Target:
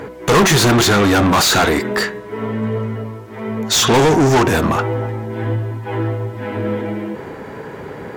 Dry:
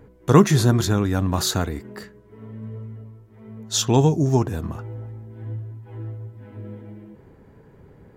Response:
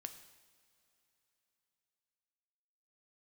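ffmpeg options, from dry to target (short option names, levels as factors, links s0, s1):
-filter_complex "[0:a]bandreject=f=187:t=h:w=4,bandreject=f=374:t=h:w=4,bandreject=f=561:t=h:w=4,bandreject=f=748:t=h:w=4,bandreject=f=935:t=h:w=4,bandreject=f=1122:t=h:w=4,bandreject=f=1309:t=h:w=4,bandreject=f=1496:t=h:w=4,bandreject=f=1683:t=h:w=4,bandreject=f=1870:t=h:w=4,bandreject=f=2057:t=h:w=4,bandreject=f=2244:t=h:w=4,bandreject=f=2431:t=h:w=4,bandreject=f=2618:t=h:w=4,bandreject=f=2805:t=h:w=4,bandreject=f=2992:t=h:w=4,bandreject=f=3179:t=h:w=4,bandreject=f=3366:t=h:w=4,bandreject=f=3553:t=h:w=4,bandreject=f=3740:t=h:w=4,bandreject=f=3927:t=h:w=4,asplit=2[s0][s1];[s1]highpass=f=720:p=1,volume=70.8,asoftclip=type=tanh:threshold=0.891[s2];[s0][s2]amix=inputs=2:normalize=0,lowpass=f=4900:p=1,volume=0.501,volume=0.668"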